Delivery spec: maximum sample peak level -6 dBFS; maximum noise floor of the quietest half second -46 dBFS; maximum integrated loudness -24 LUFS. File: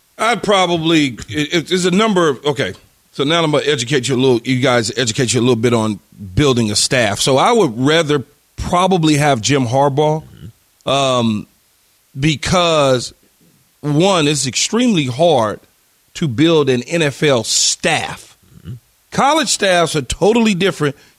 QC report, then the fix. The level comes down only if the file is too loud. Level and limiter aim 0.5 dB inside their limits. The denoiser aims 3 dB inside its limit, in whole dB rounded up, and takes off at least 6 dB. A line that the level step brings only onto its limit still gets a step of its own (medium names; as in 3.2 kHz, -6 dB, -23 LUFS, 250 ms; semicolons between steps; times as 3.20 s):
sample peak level -3.0 dBFS: fail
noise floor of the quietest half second -56 dBFS: pass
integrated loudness -14.5 LUFS: fail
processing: trim -10 dB